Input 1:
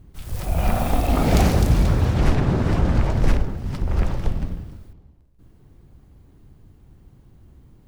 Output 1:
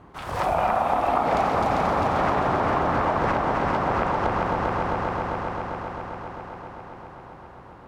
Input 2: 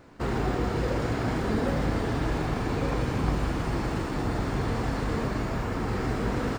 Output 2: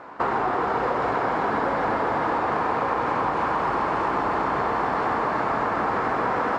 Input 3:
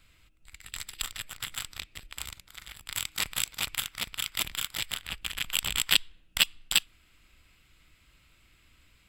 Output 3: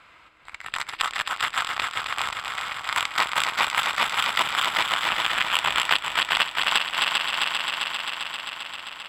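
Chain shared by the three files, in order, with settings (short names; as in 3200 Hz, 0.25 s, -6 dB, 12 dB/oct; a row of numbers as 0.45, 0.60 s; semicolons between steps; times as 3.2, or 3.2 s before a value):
band-pass 1000 Hz, Q 1.8; on a send: multi-head echo 0.132 s, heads second and third, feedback 72%, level -7 dB; on the sum: compressor 6:1, threshold -40 dBFS; match loudness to -24 LUFS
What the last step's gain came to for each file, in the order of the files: +20.0, +19.0, +22.5 dB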